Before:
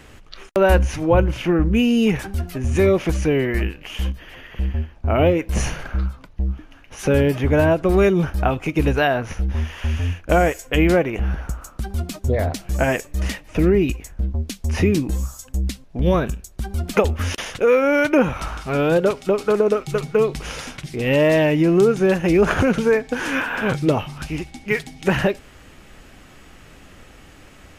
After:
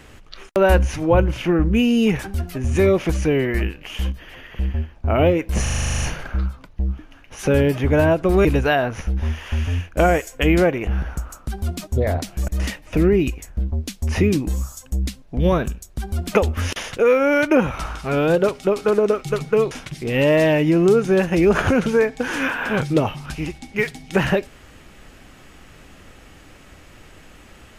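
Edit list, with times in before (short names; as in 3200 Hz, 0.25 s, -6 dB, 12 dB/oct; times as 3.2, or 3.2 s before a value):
5.62 stutter 0.04 s, 11 plays
8.05–8.77 cut
12.8–13.1 cut
20.33–20.63 cut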